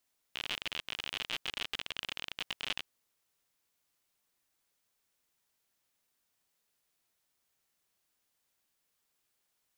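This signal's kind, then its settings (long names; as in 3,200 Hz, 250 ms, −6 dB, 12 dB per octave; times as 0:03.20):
Geiger counter clicks 57 per second −20 dBFS 2.50 s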